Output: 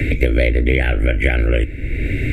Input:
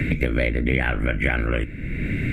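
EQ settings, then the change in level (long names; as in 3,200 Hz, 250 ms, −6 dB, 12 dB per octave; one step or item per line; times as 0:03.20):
parametric band 71 Hz +3.5 dB 2.5 octaves
phaser with its sweep stopped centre 440 Hz, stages 4
+7.0 dB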